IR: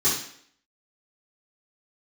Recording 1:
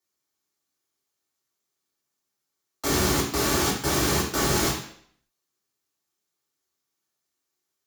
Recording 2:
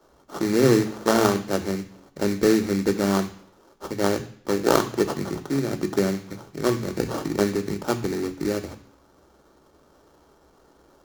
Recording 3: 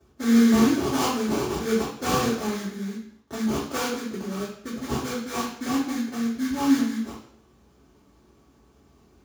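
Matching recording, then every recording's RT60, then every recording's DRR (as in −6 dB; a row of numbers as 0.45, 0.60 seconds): 3; 0.60, 0.60, 0.60 seconds; −1.5, 8.5, −11.5 decibels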